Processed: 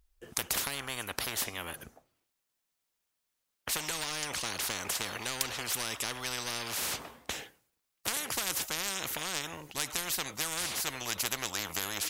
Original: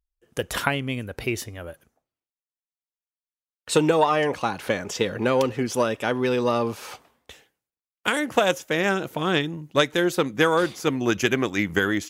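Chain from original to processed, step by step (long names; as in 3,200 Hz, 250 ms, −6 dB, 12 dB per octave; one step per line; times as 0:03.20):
in parallel at −11 dB: hard clipping −16 dBFS, distortion −13 dB
on the sum: every bin compressed towards the loudest bin 10 to 1
level −4.5 dB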